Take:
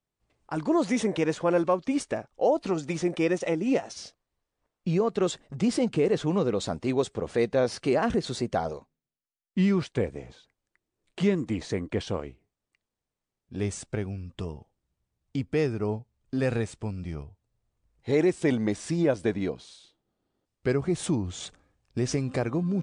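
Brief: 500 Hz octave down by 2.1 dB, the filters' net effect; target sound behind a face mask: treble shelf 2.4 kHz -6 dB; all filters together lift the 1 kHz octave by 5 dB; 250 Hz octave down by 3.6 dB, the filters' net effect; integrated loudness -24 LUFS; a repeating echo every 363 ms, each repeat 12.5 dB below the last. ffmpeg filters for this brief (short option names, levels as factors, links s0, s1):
-af "equalizer=f=250:t=o:g=-4.5,equalizer=f=500:t=o:g=-3,equalizer=f=1000:t=o:g=9,highshelf=f=2400:g=-6,aecho=1:1:363|726|1089:0.237|0.0569|0.0137,volume=2"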